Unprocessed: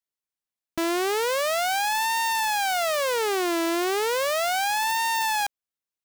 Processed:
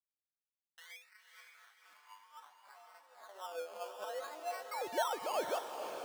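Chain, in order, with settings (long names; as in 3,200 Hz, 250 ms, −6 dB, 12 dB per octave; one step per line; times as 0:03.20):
sub-harmonics by changed cycles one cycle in 2, muted
0:00.92–0:03.29: first-order pre-emphasis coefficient 0.97
reverb reduction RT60 1 s
parametric band 4,100 Hz +6.5 dB 2 octaves
mains-hum notches 50/100/150/200/250/300/350/400/450/500 Hz
tuned comb filter 100 Hz, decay 0.33 s, harmonics odd, mix 100%
LFO wah 3.8 Hz 440–1,200 Hz, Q 2.2
0:04.71–0:05.59: sound drawn into the spectrogram rise 2,100–6,800 Hz −40 dBFS
two-band tremolo in antiphase 2.3 Hz, depth 50%, crossover 570 Hz
sample-and-hold swept by an LFO 18×, swing 60% 0.6 Hz
high-pass filter sweep 2,100 Hz → 550 Hz, 0:00.97–0:03.50
feedback delay with all-pass diffusion 500 ms, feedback 46%, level −6.5 dB
level +2.5 dB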